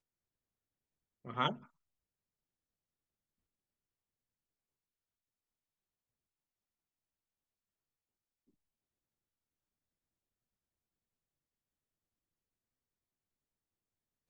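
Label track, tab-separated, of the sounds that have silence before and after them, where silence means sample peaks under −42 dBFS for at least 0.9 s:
1.250000	1.540000	sound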